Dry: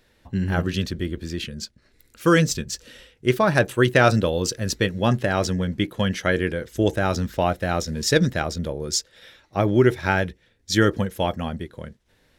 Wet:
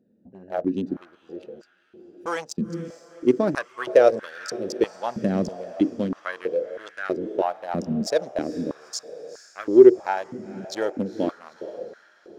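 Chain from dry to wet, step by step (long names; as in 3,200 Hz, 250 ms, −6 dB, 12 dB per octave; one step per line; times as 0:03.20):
adaptive Wiener filter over 41 samples
flat-topped bell 1,700 Hz −8 dB 2.4 octaves
in parallel at −9 dB: hard clipping −17 dBFS, distortion −11 dB
on the sum: high-shelf EQ 6,800 Hz −8 dB
feedback delay with all-pass diffusion 457 ms, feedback 52%, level −15 dB
high-pass on a step sequencer 3.1 Hz 210–1,500 Hz
level −5 dB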